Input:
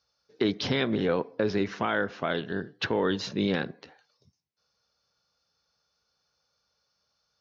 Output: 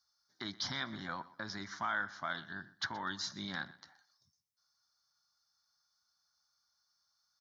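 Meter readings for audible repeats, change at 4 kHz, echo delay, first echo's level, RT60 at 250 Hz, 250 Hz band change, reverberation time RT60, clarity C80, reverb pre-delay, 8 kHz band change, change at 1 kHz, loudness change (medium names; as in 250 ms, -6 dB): 2, -6.0 dB, 123 ms, -19.5 dB, no reverb, -17.5 dB, no reverb, no reverb, no reverb, no reading, -6.5 dB, -11.0 dB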